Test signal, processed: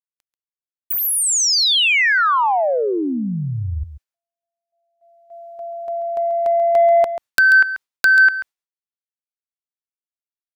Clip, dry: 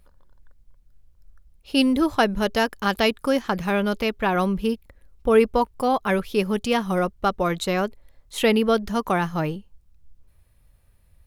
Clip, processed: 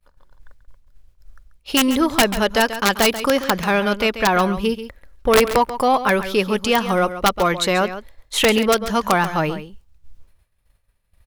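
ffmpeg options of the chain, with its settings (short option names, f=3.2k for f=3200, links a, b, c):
-filter_complex "[0:a]agate=range=-33dB:threshold=-45dB:ratio=3:detection=peak,lowshelf=f=93:g=6.5,asplit=2[a][b];[b]acompressor=threshold=-29dB:ratio=20,volume=2.5dB[c];[a][c]amix=inputs=2:normalize=0,asplit=2[d][e];[e]highpass=f=720:p=1,volume=10dB,asoftclip=type=tanh:threshold=-4dB[f];[d][f]amix=inputs=2:normalize=0,lowpass=f=6.9k:p=1,volume=-6dB,aeval=exprs='(mod(2.24*val(0)+1,2)-1)/2.24':c=same,asplit=2[g][h];[h]aecho=0:1:137:0.251[i];[g][i]amix=inputs=2:normalize=0"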